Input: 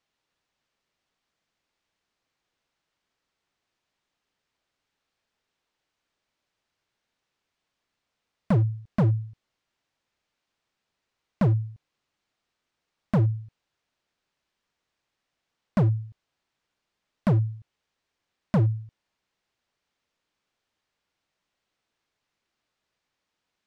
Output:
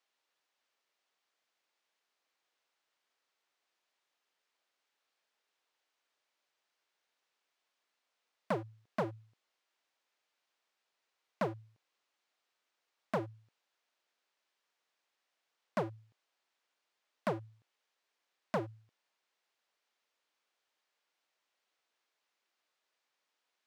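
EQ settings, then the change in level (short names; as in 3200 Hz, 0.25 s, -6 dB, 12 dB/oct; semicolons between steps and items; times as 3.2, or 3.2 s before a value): HPF 440 Hz 12 dB/oct; -2.0 dB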